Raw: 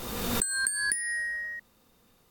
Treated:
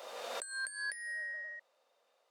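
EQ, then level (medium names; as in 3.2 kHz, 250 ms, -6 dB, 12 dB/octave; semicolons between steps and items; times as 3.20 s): resonant high-pass 590 Hz, resonance Q 6; tape spacing loss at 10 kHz 24 dB; tilt EQ +4 dB/octave; -8.5 dB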